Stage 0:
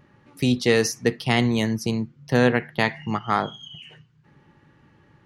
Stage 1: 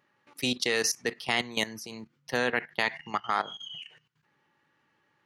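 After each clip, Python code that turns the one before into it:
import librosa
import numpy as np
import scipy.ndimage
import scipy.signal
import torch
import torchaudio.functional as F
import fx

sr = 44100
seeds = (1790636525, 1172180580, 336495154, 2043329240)

y = fx.highpass(x, sr, hz=1000.0, slope=6)
y = fx.level_steps(y, sr, step_db=15)
y = y * 10.0 ** (3.5 / 20.0)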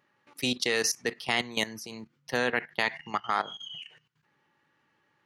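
y = x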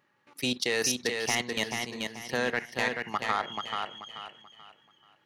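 y = 10.0 ** (-16.0 / 20.0) * np.tanh(x / 10.0 ** (-16.0 / 20.0))
y = fx.echo_feedback(y, sr, ms=434, feedback_pct=32, wet_db=-4.5)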